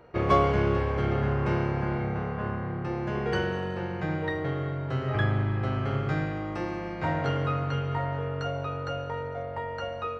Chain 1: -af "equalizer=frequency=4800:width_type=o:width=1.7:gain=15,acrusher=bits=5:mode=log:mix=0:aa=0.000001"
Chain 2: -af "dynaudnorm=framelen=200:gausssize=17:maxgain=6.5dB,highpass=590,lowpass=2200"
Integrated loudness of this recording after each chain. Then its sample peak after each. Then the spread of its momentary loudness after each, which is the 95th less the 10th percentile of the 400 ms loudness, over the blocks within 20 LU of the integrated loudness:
−28.0, −30.5 LKFS; −7.5, −12.5 dBFS; 7, 8 LU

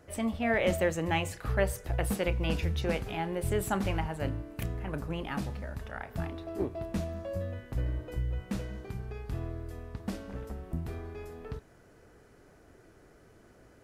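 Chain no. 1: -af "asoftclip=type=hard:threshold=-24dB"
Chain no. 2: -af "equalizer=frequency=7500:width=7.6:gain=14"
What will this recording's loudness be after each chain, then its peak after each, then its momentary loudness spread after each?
−34.5, −34.0 LKFS; −24.0, −14.0 dBFS; 10, 12 LU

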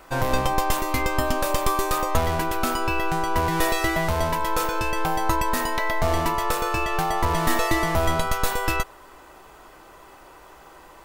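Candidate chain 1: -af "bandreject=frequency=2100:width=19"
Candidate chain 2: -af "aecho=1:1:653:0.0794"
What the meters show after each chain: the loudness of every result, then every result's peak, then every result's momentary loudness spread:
−24.0, −24.0 LKFS; −7.0, −7.5 dBFS; 3, 3 LU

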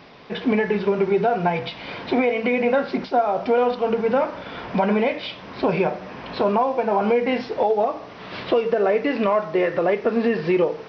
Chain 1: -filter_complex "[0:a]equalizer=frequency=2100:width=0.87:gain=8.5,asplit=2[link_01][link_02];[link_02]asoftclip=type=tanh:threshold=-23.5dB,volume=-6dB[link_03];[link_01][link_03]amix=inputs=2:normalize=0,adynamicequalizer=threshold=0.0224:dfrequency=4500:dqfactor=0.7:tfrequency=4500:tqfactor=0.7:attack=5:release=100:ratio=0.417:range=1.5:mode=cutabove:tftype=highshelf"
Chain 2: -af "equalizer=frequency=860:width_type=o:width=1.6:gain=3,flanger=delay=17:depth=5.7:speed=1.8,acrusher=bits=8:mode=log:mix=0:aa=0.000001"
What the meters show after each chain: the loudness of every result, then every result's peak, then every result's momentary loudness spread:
−18.5, −23.0 LKFS; −5.0, −8.0 dBFS; 7, 11 LU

